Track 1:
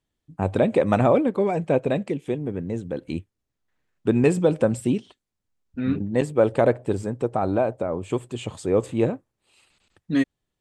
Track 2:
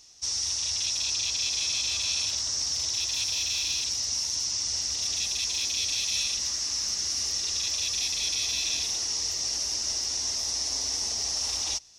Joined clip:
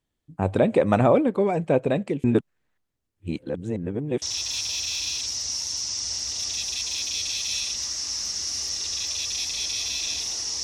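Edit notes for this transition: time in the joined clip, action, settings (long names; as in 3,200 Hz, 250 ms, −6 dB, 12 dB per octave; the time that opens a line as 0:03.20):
track 1
0:02.24–0:04.22: reverse
0:04.22: continue with track 2 from 0:02.85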